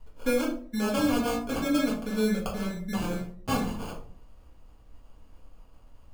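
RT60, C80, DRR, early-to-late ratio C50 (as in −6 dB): 0.50 s, 12.0 dB, −3.5 dB, 7.0 dB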